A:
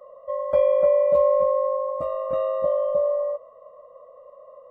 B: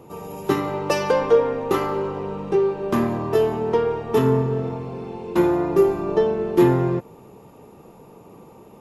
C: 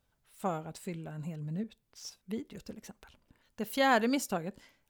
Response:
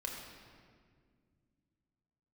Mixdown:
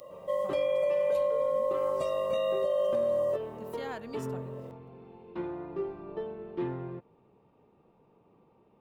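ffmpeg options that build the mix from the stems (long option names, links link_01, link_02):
-filter_complex "[0:a]equalizer=frequency=540:width_type=o:width=0.77:gain=3,aexciter=amount=12.3:drive=3.3:freq=2200,volume=-4.5dB[link_01];[1:a]lowpass=frequency=3800:width=0.5412,lowpass=frequency=3800:width=1.3066,volume=-18dB[link_02];[2:a]volume=-15dB,asplit=2[link_03][link_04];[link_04]apad=whole_len=207695[link_05];[link_01][link_05]sidechaincompress=threshold=-47dB:ratio=8:attack=47:release=865[link_06];[link_06][link_02][link_03]amix=inputs=3:normalize=0,alimiter=limit=-21dB:level=0:latency=1:release=151"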